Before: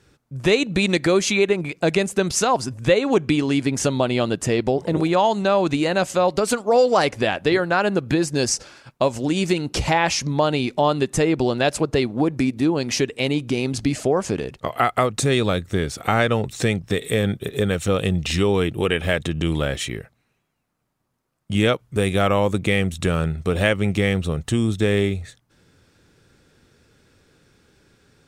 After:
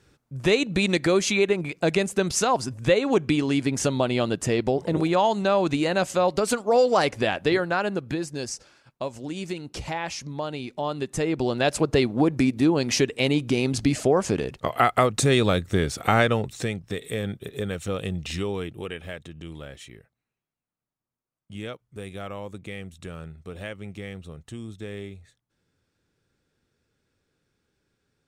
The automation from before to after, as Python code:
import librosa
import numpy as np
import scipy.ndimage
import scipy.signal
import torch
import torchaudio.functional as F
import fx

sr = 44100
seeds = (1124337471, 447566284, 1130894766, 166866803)

y = fx.gain(x, sr, db=fx.line((7.51, -3.0), (8.49, -11.5), (10.68, -11.5), (11.9, -0.5), (16.19, -0.5), (16.73, -8.5), (18.34, -8.5), (19.29, -17.0)))